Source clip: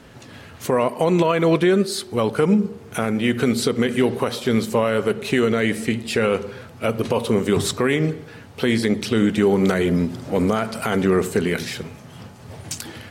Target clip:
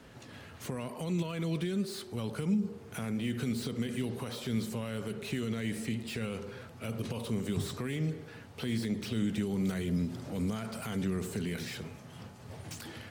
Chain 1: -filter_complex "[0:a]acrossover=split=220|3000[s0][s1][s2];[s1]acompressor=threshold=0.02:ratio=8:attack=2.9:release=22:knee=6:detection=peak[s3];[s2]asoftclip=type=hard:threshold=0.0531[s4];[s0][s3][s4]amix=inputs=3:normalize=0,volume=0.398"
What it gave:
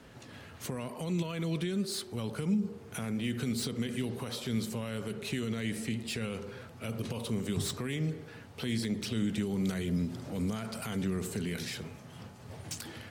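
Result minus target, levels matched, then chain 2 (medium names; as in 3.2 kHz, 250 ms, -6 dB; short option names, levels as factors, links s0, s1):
hard clipper: distortion -8 dB
-filter_complex "[0:a]acrossover=split=220|3000[s0][s1][s2];[s1]acompressor=threshold=0.02:ratio=8:attack=2.9:release=22:knee=6:detection=peak[s3];[s2]asoftclip=type=hard:threshold=0.0158[s4];[s0][s3][s4]amix=inputs=3:normalize=0,volume=0.398"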